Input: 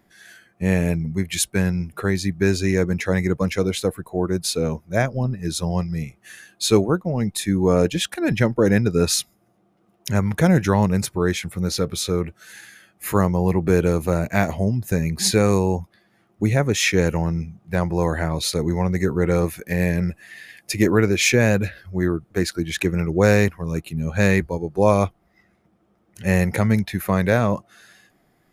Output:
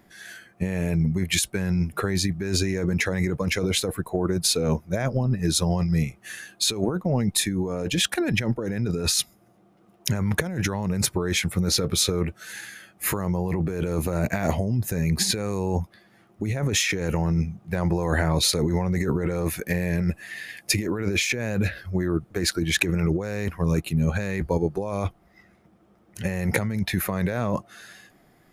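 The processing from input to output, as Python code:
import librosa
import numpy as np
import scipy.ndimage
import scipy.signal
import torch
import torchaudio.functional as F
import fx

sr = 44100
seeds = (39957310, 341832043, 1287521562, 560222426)

y = fx.over_compress(x, sr, threshold_db=-24.0, ratio=-1.0)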